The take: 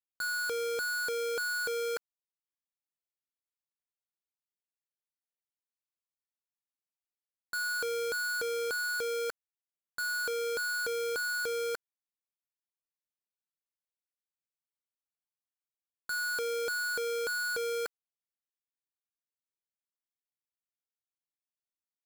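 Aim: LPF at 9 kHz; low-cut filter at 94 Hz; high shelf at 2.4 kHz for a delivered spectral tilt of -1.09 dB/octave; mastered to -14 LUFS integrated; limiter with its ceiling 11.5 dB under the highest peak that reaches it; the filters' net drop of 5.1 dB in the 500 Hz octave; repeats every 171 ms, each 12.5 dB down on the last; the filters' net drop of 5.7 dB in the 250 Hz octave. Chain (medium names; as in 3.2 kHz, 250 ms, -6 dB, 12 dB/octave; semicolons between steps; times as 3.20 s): high-pass 94 Hz; low-pass 9 kHz; peaking EQ 250 Hz -6.5 dB; peaking EQ 500 Hz -4 dB; treble shelf 2.4 kHz +7.5 dB; peak limiter -34.5 dBFS; feedback delay 171 ms, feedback 24%, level -12.5 dB; trim +28 dB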